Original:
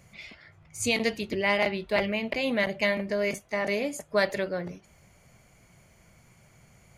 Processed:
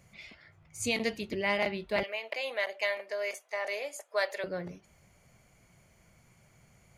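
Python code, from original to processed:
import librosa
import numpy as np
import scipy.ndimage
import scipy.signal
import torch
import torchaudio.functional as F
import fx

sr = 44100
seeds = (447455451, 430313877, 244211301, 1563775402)

y = fx.highpass(x, sr, hz=500.0, slope=24, at=(2.03, 4.44))
y = y * librosa.db_to_amplitude(-4.5)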